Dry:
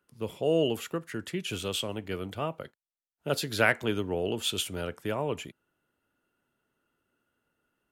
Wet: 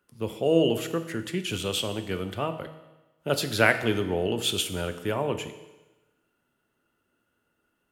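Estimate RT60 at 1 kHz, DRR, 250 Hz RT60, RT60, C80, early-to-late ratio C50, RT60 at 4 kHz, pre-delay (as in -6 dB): 1.1 s, 9.0 dB, 1.1 s, 1.1 s, 13.5 dB, 11.5 dB, 1.1 s, 6 ms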